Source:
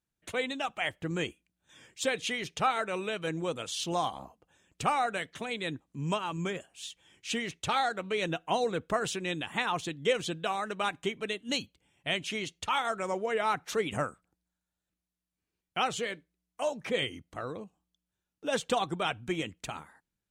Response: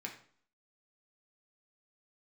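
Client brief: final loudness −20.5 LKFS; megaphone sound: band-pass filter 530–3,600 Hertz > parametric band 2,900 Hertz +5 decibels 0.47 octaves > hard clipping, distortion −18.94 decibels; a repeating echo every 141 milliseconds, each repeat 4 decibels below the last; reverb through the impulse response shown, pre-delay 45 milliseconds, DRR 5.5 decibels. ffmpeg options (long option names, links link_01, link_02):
-filter_complex "[0:a]aecho=1:1:141|282|423|564|705|846|987|1128|1269:0.631|0.398|0.25|0.158|0.0994|0.0626|0.0394|0.0249|0.0157,asplit=2[link_01][link_02];[1:a]atrim=start_sample=2205,adelay=45[link_03];[link_02][link_03]afir=irnorm=-1:irlink=0,volume=-5dB[link_04];[link_01][link_04]amix=inputs=2:normalize=0,highpass=530,lowpass=3600,equalizer=frequency=2900:width_type=o:width=0.47:gain=5,asoftclip=type=hard:threshold=-22dB,volume=10.5dB"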